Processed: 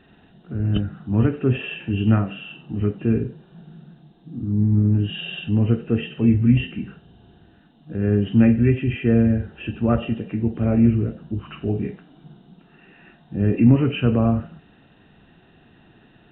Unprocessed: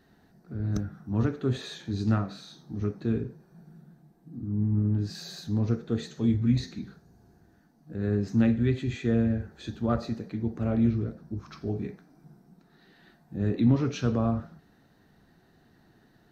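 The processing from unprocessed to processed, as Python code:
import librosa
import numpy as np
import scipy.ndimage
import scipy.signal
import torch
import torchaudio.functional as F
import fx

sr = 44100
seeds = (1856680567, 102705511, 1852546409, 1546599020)

y = fx.freq_compress(x, sr, knee_hz=2400.0, ratio=4.0)
y = fx.dynamic_eq(y, sr, hz=1100.0, q=1.1, threshold_db=-48.0, ratio=4.0, max_db=-4)
y = F.gain(torch.from_numpy(y), 8.0).numpy()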